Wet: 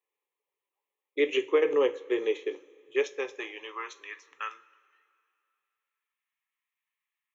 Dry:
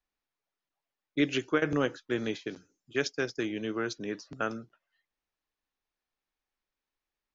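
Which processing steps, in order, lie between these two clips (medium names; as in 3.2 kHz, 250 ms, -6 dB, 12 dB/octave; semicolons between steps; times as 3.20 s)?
high-pass sweep 470 Hz -> 1.5 kHz, 2.89–4.20 s; static phaser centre 990 Hz, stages 8; two-slope reverb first 0.27 s, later 2.5 s, from -21 dB, DRR 8 dB; trim +1.5 dB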